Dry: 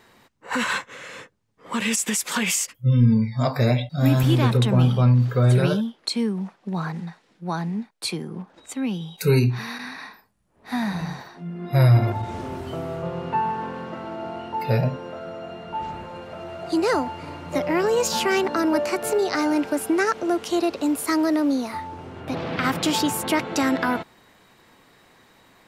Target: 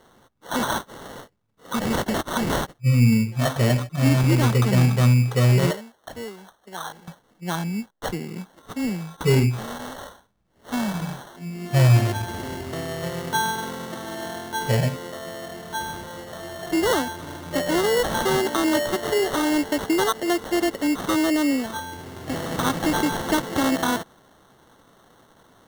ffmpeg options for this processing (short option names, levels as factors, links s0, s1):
-filter_complex "[0:a]asettb=1/sr,asplit=3[s0][s1][s2];[s0]atrim=end=5.714[s3];[s1]atrim=start=5.71:end=7.08,asetpts=PTS-STARTPTS,afade=t=in:d=0.004:c=qsin,afade=t=out:st=1.366:d=0.004:c=qsin,acrossover=split=410 3000:gain=0.0631 1 0.0708[s4][s5][s6];[s4][s5][s6]amix=inputs=3:normalize=0[s7];[s2]atrim=start=7.076[s8];[s3][s7]acrossfade=d=0.004:c1=hsin:c2=qsin[s9];[s9][s8]acrossfade=d=0.004:c1=qsin:c2=hsin,acrusher=samples=18:mix=1:aa=0.000001"